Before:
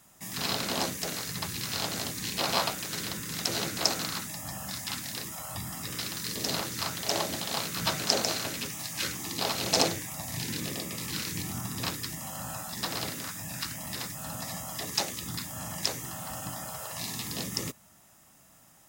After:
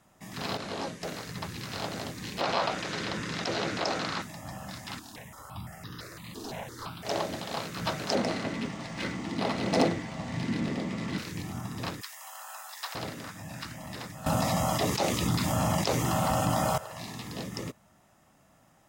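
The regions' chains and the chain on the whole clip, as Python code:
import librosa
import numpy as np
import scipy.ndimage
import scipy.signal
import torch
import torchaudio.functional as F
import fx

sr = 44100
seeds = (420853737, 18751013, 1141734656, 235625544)

y = fx.chain(x, sr, fx.lowpass(hz=11000.0, slope=24),
    fx.detune_double(cents=11), at=(0.57, 1.03))
y = fx.chain(y, sr, fx.lowpass(hz=5800.0, slope=12),
    fx.low_shelf(hz=260.0, db=-6.5),
    fx.env_flatten(amount_pct=50), at=(2.41, 4.22))
y = fx.chain(y, sr, fx.overload_stage(gain_db=28.0),
    fx.phaser_held(hz=5.9, low_hz=560.0, high_hz=2300.0), at=(4.99, 7.05))
y = fx.chain(y, sr, fx.small_body(hz=(220.0, 2000.0), ring_ms=25, db=10),
    fx.resample_linear(factor=3), at=(8.15, 11.18))
y = fx.chain(y, sr, fx.highpass(hz=850.0, slope=24),
    fx.high_shelf(hz=8500.0, db=10.0), at=(12.01, 12.95))
y = fx.chain(y, sr, fx.peak_eq(hz=1700.0, db=-6.5, octaves=0.32),
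    fx.env_flatten(amount_pct=100), at=(14.26, 16.78))
y = fx.lowpass(y, sr, hz=2100.0, slope=6)
y = fx.peak_eq(y, sr, hz=560.0, db=2.5, octaves=0.97)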